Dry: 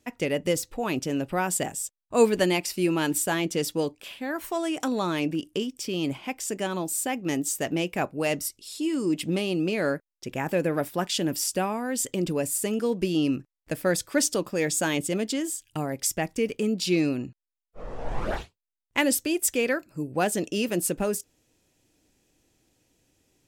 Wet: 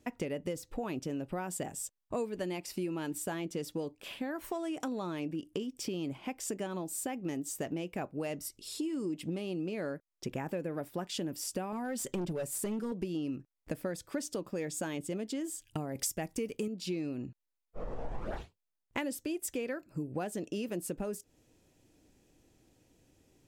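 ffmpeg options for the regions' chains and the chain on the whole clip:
-filter_complex "[0:a]asettb=1/sr,asplit=3[s0][s1][s2];[s0]atrim=end=11.724[s3];[s1]atrim=start=11.72:end=12.92,asetpts=PTS-STARTPTS,afade=t=in:d=0.004:c=qsin,afade=t=out:st=1.196:d=0.004:c=qsin,aecho=1:1:5.3:0.53,atrim=end_sample=52920,asoftclip=type=hard:threshold=0.0708[s4];[s2]atrim=start=12.916[s5];[s3][s4]acrossfade=d=0.004:c1=hsin:c2=qsin[s6];[s6][s5]acrossfade=d=0.004:c1=qsin:c2=hsin,asettb=1/sr,asplit=3[s7][s8][s9];[s7]atrim=end=15.954[s10];[s8]atrim=start=15.95:end=16.68,asetpts=PTS-STARTPTS,afade=t=in:d=0.004:c=qsin,afade=t=out:st=0.726:d=0.004:c=qsin,highshelf=f=5600:g=10.5,acontrast=42[s11];[s9]atrim=start=16.676[s12];[s10][s11]acrossfade=d=0.004:c1=hsin:c2=qsin[s13];[s13][s12]acrossfade=d=0.004:c1=qsin:c2=hsin,tiltshelf=f=1200:g=3.5,acompressor=threshold=0.02:ratio=6"

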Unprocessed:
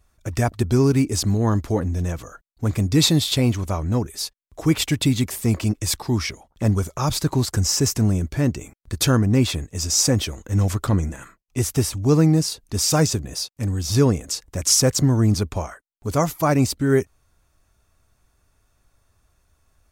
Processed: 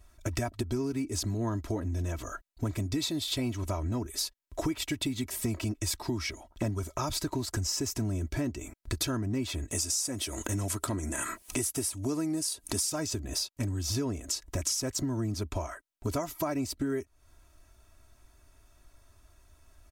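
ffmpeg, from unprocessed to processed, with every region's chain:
-filter_complex "[0:a]asettb=1/sr,asplit=3[s0][s1][s2];[s0]atrim=end=9.714[s3];[s1]atrim=start=9.71:end=12.9,asetpts=PTS-STARTPTS,afade=t=in:d=0.004:c=qsin,afade=t=out:st=3.186:d=0.004:c=qsin,highpass=f=160:p=1,equalizer=f=9800:w=1.3:g=12,acompressor=mode=upward:threshold=0.0794:ratio=2.5:attack=3.2:release=140:knee=2.83:detection=peak[s4];[s2]atrim=start=12.896[s5];[s3][s4]acrossfade=d=0.004:c1=hsin:c2=qsin[s6];[s6][s5]acrossfade=d=0.004:c1=qsin:c2=hsin,aecho=1:1:3.1:0.61,acompressor=threshold=0.0316:ratio=12,volume=1.19"

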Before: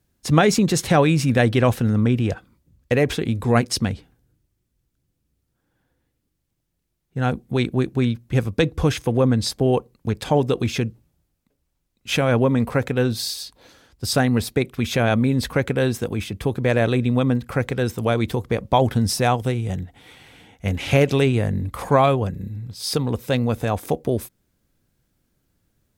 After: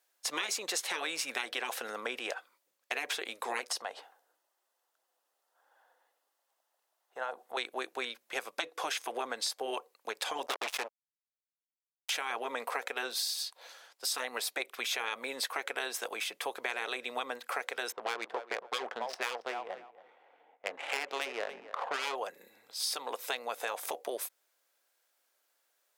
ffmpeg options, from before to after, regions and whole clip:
-filter_complex "[0:a]asettb=1/sr,asplit=3[s0][s1][s2];[s0]atrim=end=3.704[s3];[s1]atrim=start=3.7:end=7.57,asetpts=PTS-STARTPTS,afade=t=in:d=0.004:c=qsin,afade=t=out:st=3.866:d=0.004:c=qsin,equalizer=f=810:t=o:w=1.8:g=12,bandreject=f=2300:w=8.9,acompressor=threshold=0.0447:ratio=4:attack=3.2:release=140:knee=1:detection=peak[s4];[s2]atrim=start=7.566[s5];[s3][s4]acrossfade=d=0.004:c1=hsin:c2=qsin[s6];[s6][s5]acrossfade=d=0.004:c1=qsin:c2=hsin,asettb=1/sr,asplit=3[s7][s8][s9];[s7]atrim=end=10.464[s10];[s8]atrim=start=10.46:end=12.1,asetpts=PTS-STARTPTS,afade=t=in:d=0.004:c=qsin,afade=t=out:st=1.636:d=0.004:c=qsin,highpass=110,highshelf=f=8300:g=-9.5,acrusher=bits=3:mix=0:aa=0.5[s11];[s9]atrim=start=12.096[s12];[s10][s11]acrossfade=d=0.004:c1=hsin:c2=qsin[s13];[s13][s12]acrossfade=d=0.004:c1=qsin:c2=hsin,asettb=1/sr,asplit=3[s14][s15][s16];[s14]atrim=end=17.924[s17];[s15]atrim=start=17.92:end=22.15,asetpts=PTS-STARTPTS,afade=t=in:d=0.004:c=qsin,afade=t=out:st=4.226:d=0.004:c=qsin,adynamicsmooth=sensitivity=1.5:basefreq=640,asplit=2[s18][s19];[s19]adelay=278,lowpass=f=3300:p=1,volume=0.141,asplit=2[s20][s21];[s21]adelay=278,lowpass=f=3300:p=1,volume=0.16[s22];[s18][s20][s22]amix=inputs=3:normalize=0,atrim=end_sample=186543[s23];[s16]atrim=start=22.146[s24];[s17][s23]acrossfade=d=0.004:c1=hsin:c2=qsin[s25];[s25][s24]acrossfade=d=0.004:c1=qsin:c2=hsin,highpass=f=590:w=0.5412,highpass=f=590:w=1.3066,afftfilt=real='re*lt(hypot(re,im),0.251)':imag='im*lt(hypot(re,im),0.251)':win_size=1024:overlap=0.75,acompressor=threshold=0.0282:ratio=6"

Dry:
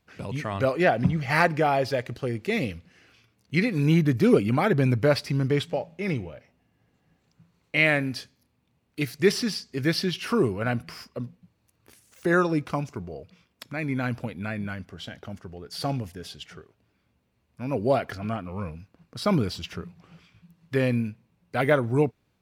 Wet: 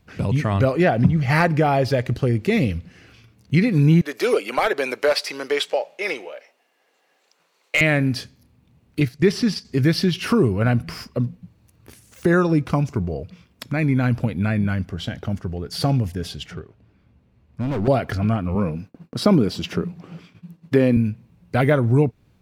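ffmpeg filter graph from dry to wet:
-filter_complex "[0:a]asettb=1/sr,asplit=3[s0][s1][s2];[s0]atrim=end=4.014[s3];[s1]atrim=start=4.01:end=7.81,asetpts=PTS-STARTPTS,afade=t=in:d=0.004:c=qsin,afade=t=out:st=3.796:d=0.004:c=qsin,highpass=f=460:w=0.5412,highpass=f=460:w=1.3066,equalizer=f=5600:w=0.33:g=4.5,volume=5.62,asoftclip=hard,volume=0.178[s4];[s2]atrim=start=7.806[s5];[s3][s4]acrossfade=d=0.004:c1=hsin:c2=qsin[s6];[s6][s5]acrossfade=d=0.004:c1=qsin:c2=hsin,asettb=1/sr,asplit=3[s7][s8][s9];[s7]atrim=end=9.004[s10];[s8]atrim=start=9:end=9.65,asetpts=PTS-STARTPTS,afade=t=in:d=0.004:c=qsin,afade=t=out:st=0.646:d=0.004:c=qsin,agate=range=0.355:threshold=0.02:ratio=16:release=100:detection=peak,highshelf=f=8100:g=-8[s11];[s9]atrim=start=9.646[s12];[s10][s11]acrossfade=d=0.004:c1=hsin:c2=qsin[s13];[s13][s12]acrossfade=d=0.004:c1=qsin:c2=hsin,asettb=1/sr,asplit=3[s14][s15][s16];[s14]atrim=end=16.514[s17];[s15]atrim=start=16.51:end=17.88,asetpts=PTS-STARTPTS,afade=t=in:d=0.004:c=qsin,afade=t=out:st=1.366:d=0.004:c=qsin,lowpass=f=3000:p=1,asoftclip=type=hard:threshold=0.0237[s18];[s16]atrim=start=17.876[s19];[s17][s18]acrossfade=d=0.004:c1=hsin:c2=qsin[s20];[s20][s19]acrossfade=d=0.004:c1=qsin:c2=hsin,asettb=1/sr,asplit=3[s21][s22][s23];[s21]atrim=end=18.554[s24];[s22]atrim=start=18.55:end=20.97,asetpts=PTS-STARTPTS,afade=t=in:d=0.004:c=qsin,afade=t=out:st=2.416:d=0.004:c=qsin,highpass=290,lowshelf=f=470:g=11.5,agate=range=0.0224:threshold=0.00141:ratio=3:release=100:detection=peak[s25];[s23]atrim=start=20.966[s26];[s24][s25]acrossfade=d=0.004:c1=hsin:c2=qsin[s27];[s27][s26]acrossfade=d=0.004:c1=qsin:c2=hsin,lowshelf=f=260:g=10,acompressor=threshold=0.0631:ratio=2,volume=2.11"

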